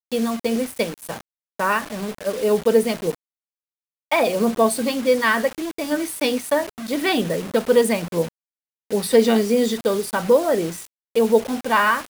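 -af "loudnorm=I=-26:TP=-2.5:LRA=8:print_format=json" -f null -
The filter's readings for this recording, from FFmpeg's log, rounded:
"input_i" : "-20.6",
"input_tp" : "-3.9",
"input_lra" : "3.0",
"input_thresh" : "-30.8",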